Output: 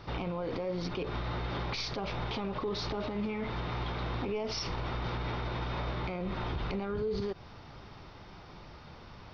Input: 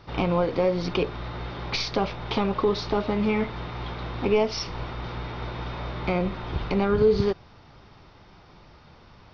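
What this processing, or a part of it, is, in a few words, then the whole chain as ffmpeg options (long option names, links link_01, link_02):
stacked limiters: -af "alimiter=limit=-17.5dB:level=0:latency=1:release=71,alimiter=limit=-22dB:level=0:latency=1:release=152,alimiter=level_in=4dB:limit=-24dB:level=0:latency=1:release=49,volume=-4dB,volume=1.5dB"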